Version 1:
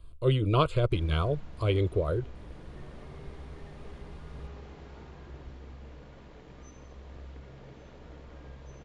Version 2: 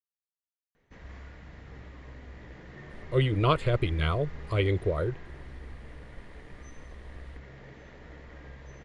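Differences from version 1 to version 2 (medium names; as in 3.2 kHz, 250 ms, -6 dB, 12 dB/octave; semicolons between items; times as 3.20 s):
speech: entry +2.90 s; master: add peaking EQ 1.9 kHz +12 dB 0.4 oct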